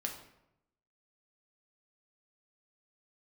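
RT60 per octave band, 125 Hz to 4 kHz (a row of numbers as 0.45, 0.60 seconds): 1.0, 0.95, 0.85, 0.80, 0.70, 0.55 seconds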